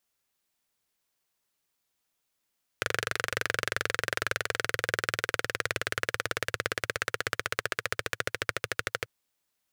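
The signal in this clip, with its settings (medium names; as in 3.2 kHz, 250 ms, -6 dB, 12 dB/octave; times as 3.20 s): single-cylinder engine model, changing speed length 6.24 s, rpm 2900, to 1500, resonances 110/480/1500 Hz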